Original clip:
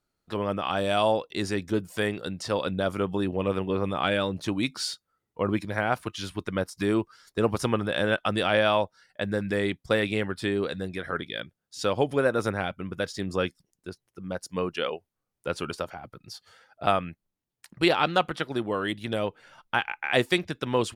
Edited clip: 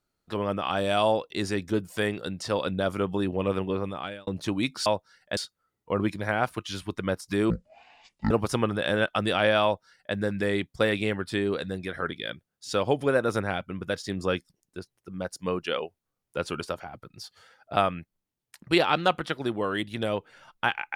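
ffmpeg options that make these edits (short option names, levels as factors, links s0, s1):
-filter_complex "[0:a]asplit=6[s0][s1][s2][s3][s4][s5];[s0]atrim=end=4.27,asetpts=PTS-STARTPTS,afade=t=out:st=3.64:d=0.63[s6];[s1]atrim=start=4.27:end=4.862,asetpts=PTS-STARTPTS,afade=t=in:d=0.004:c=hsin[s7];[s2]atrim=start=8.738:end=9.252[s8];[s3]atrim=start=4.858:end=6.994[s9];[s4]atrim=start=6.99:end=7.41,asetpts=PTS-STARTPTS,asetrate=22932,aresample=44100,atrim=end_sample=35619,asetpts=PTS-STARTPTS[s10];[s5]atrim=start=7.406[s11];[s6][s7]concat=n=2:v=0:a=1[s12];[s12][s8]acrossfade=d=0.004:c1=hsin:c2=hsin[s13];[s13][s9]acrossfade=d=0.004:c1=hsin:c2=hsin[s14];[s14][s10]acrossfade=d=0.004:c1=hsin:c2=hsin[s15];[s15][s11]acrossfade=d=0.004:c1=hsin:c2=hsin"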